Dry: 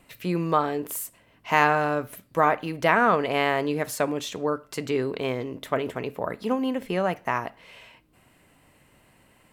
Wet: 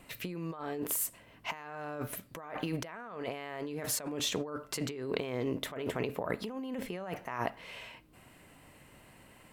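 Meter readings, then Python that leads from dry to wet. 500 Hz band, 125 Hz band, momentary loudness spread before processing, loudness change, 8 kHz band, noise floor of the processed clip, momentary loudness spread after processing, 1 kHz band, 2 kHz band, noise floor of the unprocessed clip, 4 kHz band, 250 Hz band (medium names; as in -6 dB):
-12.0 dB, -8.5 dB, 11 LU, -11.5 dB, +0.5 dB, -59 dBFS, 23 LU, -17.0 dB, -15.0 dB, -60 dBFS, -4.0 dB, -9.5 dB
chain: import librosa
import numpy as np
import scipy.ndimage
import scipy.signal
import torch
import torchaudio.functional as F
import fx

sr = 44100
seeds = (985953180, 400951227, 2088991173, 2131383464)

y = fx.over_compress(x, sr, threshold_db=-33.0, ratio=-1.0)
y = y * 10.0 ** (-5.0 / 20.0)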